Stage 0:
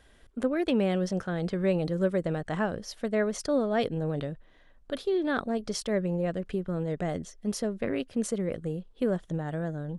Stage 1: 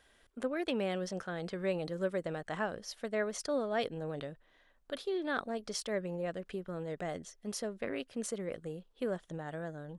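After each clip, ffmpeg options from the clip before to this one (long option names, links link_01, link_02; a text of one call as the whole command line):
ffmpeg -i in.wav -af "deesser=0.55,lowshelf=frequency=330:gain=-11,volume=-3dB" out.wav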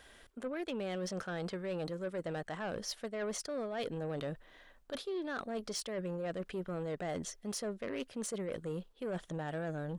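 ffmpeg -i in.wav -af "areverse,acompressor=threshold=-41dB:ratio=10,areverse,asoftclip=type=tanh:threshold=-39dB,volume=8dB" out.wav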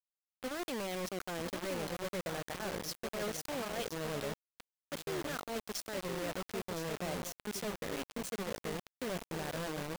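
ffmpeg -i in.wav -filter_complex "[0:a]asplit=2[link_01][link_02];[link_02]adelay=1015,lowpass=frequency=1400:poles=1,volume=-5dB,asplit=2[link_03][link_04];[link_04]adelay=1015,lowpass=frequency=1400:poles=1,volume=0.17,asplit=2[link_05][link_06];[link_06]adelay=1015,lowpass=frequency=1400:poles=1,volume=0.17[link_07];[link_03][link_05][link_07]amix=inputs=3:normalize=0[link_08];[link_01][link_08]amix=inputs=2:normalize=0,acrusher=bits=5:mix=0:aa=0.000001,volume=-3dB" out.wav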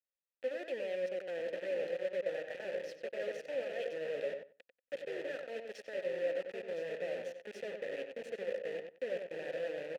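ffmpeg -i in.wav -filter_complex "[0:a]asplit=3[link_01][link_02][link_03];[link_01]bandpass=frequency=530:width_type=q:width=8,volume=0dB[link_04];[link_02]bandpass=frequency=1840:width_type=q:width=8,volume=-6dB[link_05];[link_03]bandpass=frequency=2480:width_type=q:width=8,volume=-9dB[link_06];[link_04][link_05][link_06]amix=inputs=3:normalize=0,asplit=2[link_07][link_08];[link_08]adelay=93,lowpass=frequency=2800:poles=1,volume=-6dB,asplit=2[link_09][link_10];[link_10]adelay=93,lowpass=frequency=2800:poles=1,volume=0.16,asplit=2[link_11][link_12];[link_12]adelay=93,lowpass=frequency=2800:poles=1,volume=0.16[link_13];[link_07][link_09][link_11][link_13]amix=inputs=4:normalize=0,volume=8dB" out.wav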